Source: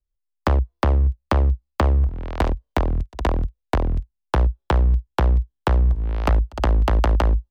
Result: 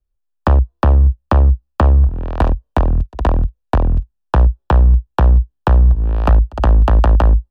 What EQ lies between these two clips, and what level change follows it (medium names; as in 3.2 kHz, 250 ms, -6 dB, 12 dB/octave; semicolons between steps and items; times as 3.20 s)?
dynamic bell 380 Hz, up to -5 dB, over -36 dBFS, Q 1.4; Butterworth band-stop 2.1 kHz, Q 5.9; treble shelf 2.2 kHz -12 dB; +7.5 dB